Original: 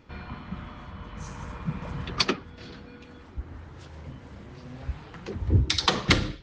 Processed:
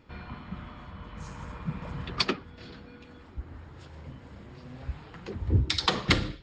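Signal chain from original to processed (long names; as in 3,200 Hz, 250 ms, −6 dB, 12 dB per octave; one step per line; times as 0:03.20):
notch filter 6,000 Hz, Q 8.7
level −2.5 dB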